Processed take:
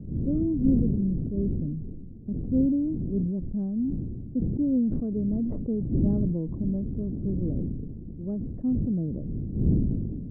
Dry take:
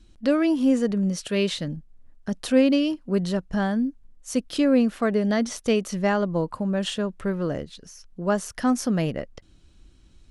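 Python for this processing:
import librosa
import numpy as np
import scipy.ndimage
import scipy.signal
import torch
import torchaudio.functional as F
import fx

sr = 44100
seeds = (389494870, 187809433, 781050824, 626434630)

y = fx.dmg_wind(x, sr, seeds[0], corner_hz=190.0, level_db=-27.0)
y = fx.ladder_lowpass(y, sr, hz=390.0, resonance_pct=25)
y = fx.sustainer(y, sr, db_per_s=29.0)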